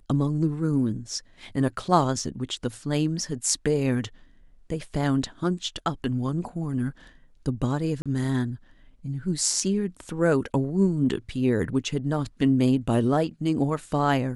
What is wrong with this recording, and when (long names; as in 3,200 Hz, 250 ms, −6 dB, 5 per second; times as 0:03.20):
0:08.02–0:08.06: drop-out 36 ms